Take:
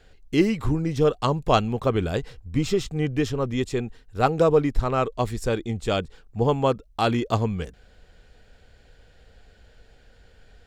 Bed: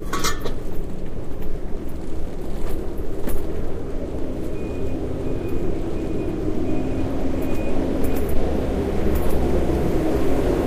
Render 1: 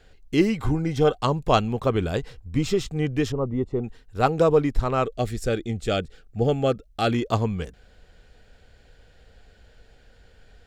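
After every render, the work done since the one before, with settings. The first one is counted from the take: 0.54–1.16 small resonant body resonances 770/1500/2100/3200 Hz, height 8 dB -> 11 dB; 3.32–3.84 polynomial smoothing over 65 samples; 5.05–7.13 Butterworth band-stop 980 Hz, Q 2.6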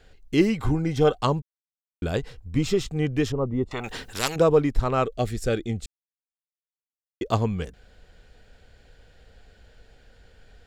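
1.42–2.02 mute; 3.71–4.36 spectral compressor 4:1; 5.86–7.21 mute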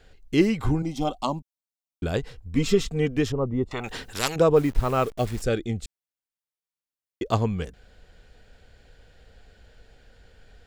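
0.82–2.03 fixed phaser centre 440 Hz, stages 6; 2.55–3.17 comb 4.4 ms, depth 78%; 4.56–5.42 level-crossing sampler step -39 dBFS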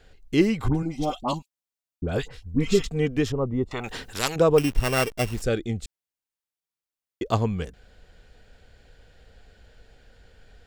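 0.68–2.84 dispersion highs, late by 67 ms, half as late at 1300 Hz; 4.58–5.34 sample sorter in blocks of 16 samples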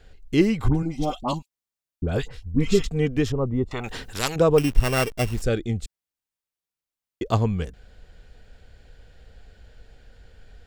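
low shelf 140 Hz +5.5 dB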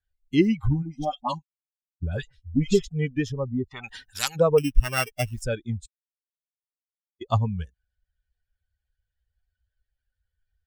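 per-bin expansion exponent 2; in parallel at 0 dB: compressor, threshold -33 dBFS, peak gain reduction 21.5 dB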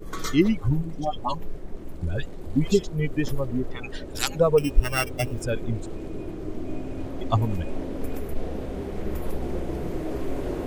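add bed -9.5 dB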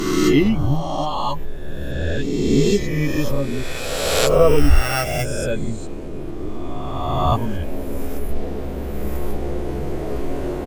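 spectral swells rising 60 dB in 1.92 s; doubler 14 ms -5.5 dB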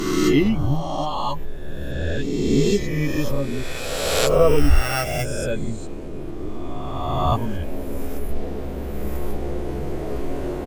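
gain -2 dB

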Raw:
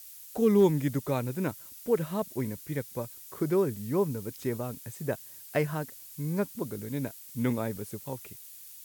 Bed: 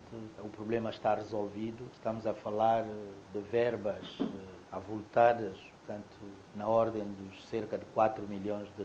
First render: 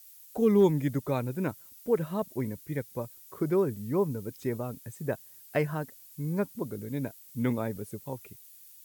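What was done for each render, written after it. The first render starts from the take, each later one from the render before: denoiser 7 dB, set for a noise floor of -48 dBFS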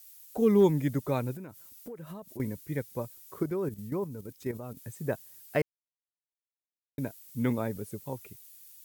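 1.35–2.4 compressor 20:1, threshold -38 dBFS; 3.43–4.77 level quantiser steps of 10 dB; 5.62–6.98 mute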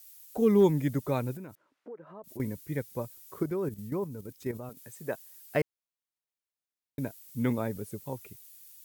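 1.55–2.24 Butterworth band-pass 680 Hz, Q 0.52; 4.69–5.44 HPF 410 Hz 6 dB/oct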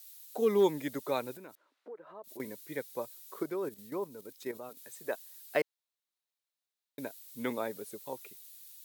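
HPF 390 Hz 12 dB/oct; bell 3900 Hz +6.5 dB 0.43 oct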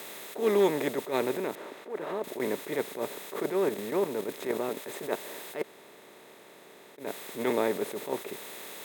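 per-bin compression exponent 0.4; attack slew limiter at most 170 dB/s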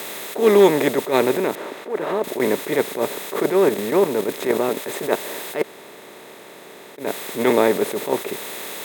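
gain +11 dB

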